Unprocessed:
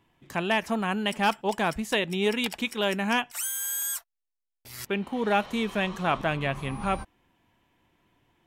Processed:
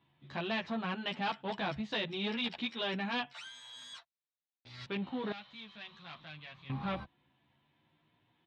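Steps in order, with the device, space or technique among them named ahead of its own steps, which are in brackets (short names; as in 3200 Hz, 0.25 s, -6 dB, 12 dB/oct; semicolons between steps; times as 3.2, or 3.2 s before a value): barber-pole flanger into a guitar amplifier (endless flanger 11.7 ms +0.55 Hz; soft clip -26.5 dBFS, distortion -11 dB; speaker cabinet 88–4200 Hz, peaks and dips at 140 Hz +8 dB, 420 Hz -4 dB, 3800 Hz +9 dB); 5.32–6.7 passive tone stack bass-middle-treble 5-5-5; gain -3 dB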